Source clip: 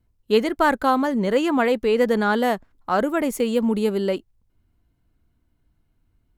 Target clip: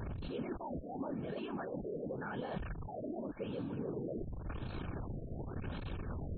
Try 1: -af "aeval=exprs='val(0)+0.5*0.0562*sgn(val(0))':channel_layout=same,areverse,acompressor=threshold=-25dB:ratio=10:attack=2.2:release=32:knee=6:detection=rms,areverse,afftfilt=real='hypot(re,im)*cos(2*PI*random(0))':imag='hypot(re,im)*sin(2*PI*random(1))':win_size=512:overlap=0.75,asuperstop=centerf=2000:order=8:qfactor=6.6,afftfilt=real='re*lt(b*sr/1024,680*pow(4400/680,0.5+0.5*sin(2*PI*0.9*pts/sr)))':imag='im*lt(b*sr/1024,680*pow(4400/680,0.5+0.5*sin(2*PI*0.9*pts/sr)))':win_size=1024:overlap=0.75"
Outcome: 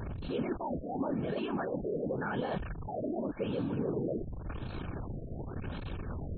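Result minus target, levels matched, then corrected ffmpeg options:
downward compressor: peak gain reduction −6.5 dB
-af "aeval=exprs='val(0)+0.5*0.0562*sgn(val(0))':channel_layout=same,areverse,acompressor=threshold=-32.5dB:ratio=10:attack=2.2:release=32:knee=6:detection=rms,areverse,afftfilt=real='hypot(re,im)*cos(2*PI*random(0))':imag='hypot(re,im)*sin(2*PI*random(1))':win_size=512:overlap=0.75,asuperstop=centerf=2000:order=8:qfactor=6.6,afftfilt=real='re*lt(b*sr/1024,680*pow(4400/680,0.5+0.5*sin(2*PI*0.9*pts/sr)))':imag='im*lt(b*sr/1024,680*pow(4400/680,0.5+0.5*sin(2*PI*0.9*pts/sr)))':win_size=1024:overlap=0.75"

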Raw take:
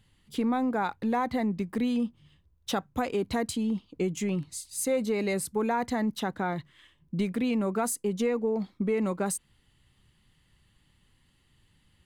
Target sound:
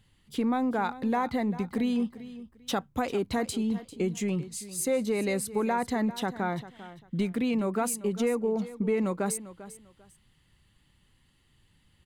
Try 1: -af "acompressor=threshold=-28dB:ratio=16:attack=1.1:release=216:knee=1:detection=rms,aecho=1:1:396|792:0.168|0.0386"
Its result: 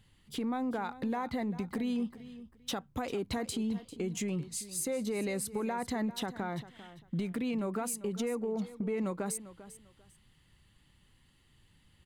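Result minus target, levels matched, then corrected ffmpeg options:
downward compressor: peak gain reduction +9 dB
-af "aecho=1:1:396|792:0.168|0.0386"

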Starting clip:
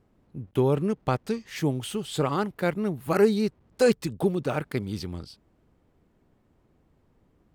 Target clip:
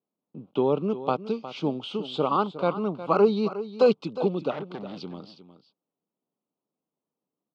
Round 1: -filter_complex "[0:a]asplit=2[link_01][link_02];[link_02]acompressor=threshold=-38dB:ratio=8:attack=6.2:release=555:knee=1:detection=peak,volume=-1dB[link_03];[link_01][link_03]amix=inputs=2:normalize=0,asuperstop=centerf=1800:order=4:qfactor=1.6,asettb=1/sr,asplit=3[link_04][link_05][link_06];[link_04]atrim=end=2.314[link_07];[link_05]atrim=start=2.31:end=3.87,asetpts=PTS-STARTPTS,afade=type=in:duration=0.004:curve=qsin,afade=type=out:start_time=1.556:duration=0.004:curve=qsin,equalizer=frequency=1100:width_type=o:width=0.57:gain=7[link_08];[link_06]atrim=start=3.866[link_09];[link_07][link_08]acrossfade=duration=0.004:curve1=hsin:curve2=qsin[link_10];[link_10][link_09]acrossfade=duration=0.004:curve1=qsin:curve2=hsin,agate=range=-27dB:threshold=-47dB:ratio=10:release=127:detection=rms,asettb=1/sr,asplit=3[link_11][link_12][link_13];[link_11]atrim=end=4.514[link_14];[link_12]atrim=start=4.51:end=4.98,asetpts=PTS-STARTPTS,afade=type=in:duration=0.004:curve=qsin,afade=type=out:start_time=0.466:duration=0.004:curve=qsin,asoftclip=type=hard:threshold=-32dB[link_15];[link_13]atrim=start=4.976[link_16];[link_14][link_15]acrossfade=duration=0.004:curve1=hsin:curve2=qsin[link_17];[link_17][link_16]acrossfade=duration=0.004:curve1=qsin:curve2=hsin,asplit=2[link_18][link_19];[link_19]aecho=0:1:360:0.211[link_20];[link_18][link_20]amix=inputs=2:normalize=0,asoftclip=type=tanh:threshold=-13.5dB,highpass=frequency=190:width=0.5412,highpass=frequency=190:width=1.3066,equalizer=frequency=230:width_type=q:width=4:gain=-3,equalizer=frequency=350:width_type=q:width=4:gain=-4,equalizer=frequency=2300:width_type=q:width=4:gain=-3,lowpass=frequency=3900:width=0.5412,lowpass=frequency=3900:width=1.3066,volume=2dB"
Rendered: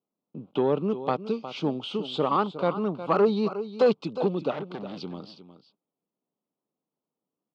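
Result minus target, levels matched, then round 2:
soft clipping: distortion +19 dB; downward compressor: peak gain reduction −9 dB
-filter_complex "[0:a]asplit=2[link_01][link_02];[link_02]acompressor=threshold=-48.5dB:ratio=8:attack=6.2:release=555:knee=1:detection=peak,volume=-1dB[link_03];[link_01][link_03]amix=inputs=2:normalize=0,asuperstop=centerf=1800:order=4:qfactor=1.6,asettb=1/sr,asplit=3[link_04][link_05][link_06];[link_04]atrim=end=2.314[link_07];[link_05]atrim=start=2.31:end=3.87,asetpts=PTS-STARTPTS,afade=type=in:duration=0.004:curve=qsin,afade=type=out:start_time=1.556:duration=0.004:curve=qsin,equalizer=frequency=1100:width_type=o:width=0.57:gain=7[link_08];[link_06]atrim=start=3.866[link_09];[link_07][link_08]acrossfade=duration=0.004:curve1=hsin:curve2=qsin[link_10];[link_10][link_09]acrossfade=duration=0.004:curve1=qsin:curve2=hsin,agate=range=-27dB:threshold=-47dB:ratio=10:release=127:detection=rms,asettb=1/sr,asplit=3[link_11][link_12][link_13];[link_11]atrim=end=4.514[link_14];[link_12]atrim=start=4.51:end=4.98,asetpts=PTS-STARTPTS,afade=type=in:duration=0.004:curve=qsin,afade=type=out:start_time=0.466:duration=0.004:curve=qsin,asoftclip=type=hard:threshold=-32dB[link_15];[link_13]atrim=start=4.976[link_16];[link_14][link_15]acrossfade=duration=0.004:curve1=hsin:curve2=qsin[link_17];[link_17][link_16]acrossfade=duration=0.004:curve1=qsin:curve2=hsin,asplit=2[link_18][link_19];[link_19]aecho=0:1:360:0.211[link_20];[link_18][link_20]amix=inputs=2:normalize=0,asoftclip=type=tanh:threshold=-2.5dB,highpass=frequency=190:width=0.5412,highpass=frequency=190:width=1.3066,equalizer=frequency=230:width_type=q:width=4:gain=-3,equalizer=frequency=350:width_type=q:width=4:gain=-4,equalizer=frequency=2300:width_type=q:width=4:gain=-3,lowpass=frequency=3900:width=0.5412,lowpass=frequency=3900:width=1.3066,volume=2dB"

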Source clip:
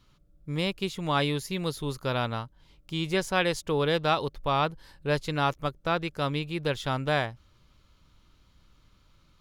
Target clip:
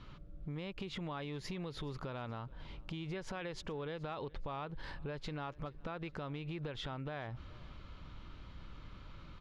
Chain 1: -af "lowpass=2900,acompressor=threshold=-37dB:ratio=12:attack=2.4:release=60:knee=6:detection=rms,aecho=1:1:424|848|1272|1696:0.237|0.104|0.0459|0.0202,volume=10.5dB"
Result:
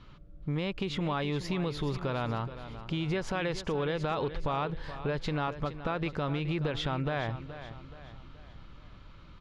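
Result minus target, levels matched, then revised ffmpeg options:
downward compressor: peak gain reduction −10.5 dB; echo-to-direct +11.5 dB
-af "lowpass=2900,acompressor=threshold=-48.5dB:ratio=12:attack=2.4:release=60:knee=6:detection=rms,aecho=1:1:424|848|1272:0.0631|0.0278|0.0122,volume=10.5dB"

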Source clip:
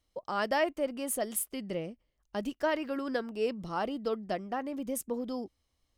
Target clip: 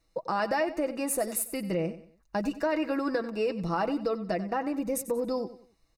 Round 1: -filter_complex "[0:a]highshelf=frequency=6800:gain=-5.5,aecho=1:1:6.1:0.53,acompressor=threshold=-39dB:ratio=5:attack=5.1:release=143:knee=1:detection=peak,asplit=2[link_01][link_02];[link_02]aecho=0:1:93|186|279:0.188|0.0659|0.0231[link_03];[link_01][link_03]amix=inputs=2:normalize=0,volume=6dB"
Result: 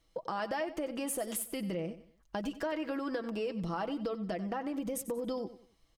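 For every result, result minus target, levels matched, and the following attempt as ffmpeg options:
downward compressor: peak gain reduction +7 dB; 4,000 Hz band +3.0 dB
-filter_complex "[0:a]highshelf=frequency=6800:gain=-5.5,aecho=1:1:6.1:0.53,acompressor=threshold=-30dB:ratio=5:attack=5.1:release=143:knee=1:detection=peak,asplit=2[link_01][link_02];[link_02]aecho=0:1:93|186|279:0.188|0.0659|0.0231[link_03];[link_01][link_03]amix=inputs=2:normalize=0,volume=6dB"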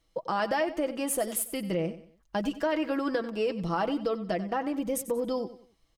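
4,000 Hz band +3.0 dB
-filter_complex "[0:a]asuperstop=centerf=3200:order=8:qfactor=5.4,highshelf=frequency=6800:gain=-5.5,aecho=1:1:6.1:0.53,acompressor=threshold=-30dB:ratio=5:attack=5.1:release=143:knee=1:detection=peak,asplit=2[link_01][link_02];[link_02]aecho=0:1:93|186|279:0.188|0.0659|0.0231[link_03];[link_01][link_03]amix=inputs=2:normalize=0,volume=6dB"

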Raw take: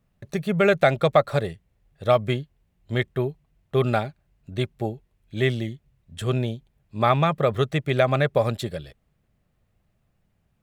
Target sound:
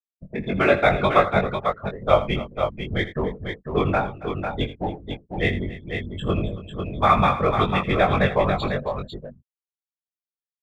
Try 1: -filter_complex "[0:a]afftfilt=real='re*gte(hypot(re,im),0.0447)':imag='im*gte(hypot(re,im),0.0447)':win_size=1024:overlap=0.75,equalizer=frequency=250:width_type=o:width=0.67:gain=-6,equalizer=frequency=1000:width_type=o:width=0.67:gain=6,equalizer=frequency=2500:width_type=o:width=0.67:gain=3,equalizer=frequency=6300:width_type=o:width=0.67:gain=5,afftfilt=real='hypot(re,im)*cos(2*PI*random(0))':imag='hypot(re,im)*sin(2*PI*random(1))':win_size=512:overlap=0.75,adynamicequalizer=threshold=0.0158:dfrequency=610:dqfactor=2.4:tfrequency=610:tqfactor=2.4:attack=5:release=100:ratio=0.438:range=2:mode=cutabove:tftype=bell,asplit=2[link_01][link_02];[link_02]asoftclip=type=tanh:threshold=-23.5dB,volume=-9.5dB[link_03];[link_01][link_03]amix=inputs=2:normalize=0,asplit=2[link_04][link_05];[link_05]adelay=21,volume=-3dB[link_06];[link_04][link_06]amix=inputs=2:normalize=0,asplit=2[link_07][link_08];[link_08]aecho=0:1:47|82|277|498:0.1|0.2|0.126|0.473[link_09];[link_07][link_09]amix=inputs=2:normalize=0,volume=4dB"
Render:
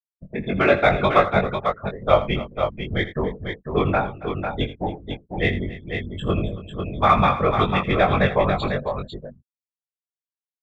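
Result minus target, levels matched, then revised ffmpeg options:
soft clipping: distortion −6 dB
-filter_complex "[0:a]afftfilt=real='re*gte(hypot(re,im),0.0447)':imag='im*gte(hypot(re,im),0.0447)':win_size=1024:overlap=0.75,equalizer=frequency=250:width_type=o:width=0.67:gain=-6,equalizer=frequency=1000:width_type=o:width=0.67:gain=6,equalizer=frequency=2500:width_type=o:width=0.67:gain=3,equalizer=frequency=6300:width_type=o:width=0.67:gain=5,afftfilt=real='hypot(re,im)*cos(2*PI*random(0))':imag='hypot(re,im)*sin(2*PI*random(1))':win_size=512:overlap=0.75,adynamicequalizer=threshold=0.0158:dfrequency=610:dqfactor=2.4:tfrequency=610:tqfactor=2.4:attack=5:release=100:ratio=0.438:range=2:mode=cutabove:tftype=bell,asplit=2[link_01][link_02];[link_02]asoftclip=type=tanh:threshold=-33.5dB,volume=-9.5dB[link_03];[link_01][link_03]amix=inputs=2:normalize=0,asplit=2[link_04][link_05];[link_05]adelay=21,volume=-3dB[link_06];[link_04][link_06]amix=inputs=2:normalize=0,asplit=2[link_07][link_08];[link_08]aecho=0:1:47|82|277|498:0.1|0.2|0.126|0.473[link_09];[link_07][link_09]amix=inputs=2:normalize=0,volume=4dB"

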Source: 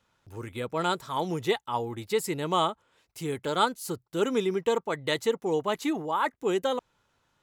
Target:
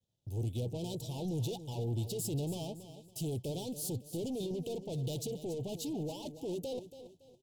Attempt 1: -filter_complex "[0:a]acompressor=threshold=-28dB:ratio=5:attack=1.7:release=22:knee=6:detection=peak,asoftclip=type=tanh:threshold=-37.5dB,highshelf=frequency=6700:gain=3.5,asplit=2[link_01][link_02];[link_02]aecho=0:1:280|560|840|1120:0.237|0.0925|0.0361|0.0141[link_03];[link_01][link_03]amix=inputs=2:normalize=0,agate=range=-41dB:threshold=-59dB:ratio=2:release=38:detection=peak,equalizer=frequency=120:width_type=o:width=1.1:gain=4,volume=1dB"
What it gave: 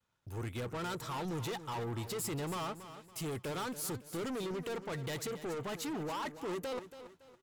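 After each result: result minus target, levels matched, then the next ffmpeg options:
2,000 Hz band +19.0 dB; 125 Hz band −4.5 dB
-filter_complex "[0:a]acompressor=threshold=-28dB:ratio=5:attack=1.7:release=22:knee=6:detection=peak,asoftclip=type=tanh:threshold=-37.5dB,asuperstop=centerf=1500:order=8:qfactor=0.66,highshelf=frequency=6700:gain=3.5,asplit=2[link_01][link_02];[link_02]aecho=0:1:280|560|840|1120:0.237|0.0925|0.0361|0.0141[link_03];[link_01][link_03]amix=inputs=2:normalize=0,agate=range=-41dB:threshold=-59dB:ratio=2:release=38:detection=peak,equalizer=frequency=120:width_type=o:width=1.1:gain=4,volume=1dB"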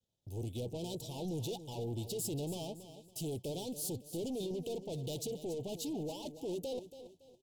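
125 Hz band −3.5 dB
-filter_complex "[0:a]acompressor=threshold=-28dB:ratio=5:attack=1.7:release=22:knee=6:detection=peak,asoftclip=type=tanh:threshold=-37.5dB,asuperstop=centerf=1500:order=8:qfactor=0.66,highshelf=frequency=6700:gain=3.5,asplit=2[link_01][link_02];[link_02]aecho=0:1:280|560|840|1120:0.237|0.0925|0.0361|0.0141[link_03];[link_01][link_03]amix=inputs=2:normalize=0,agate=range=-41dB:threshold=-59dB:ratio=2:release=38:detection=peak,equalizer=frequency=120:width_type=o:width=1.1:gain=10.5,volume=1dB"

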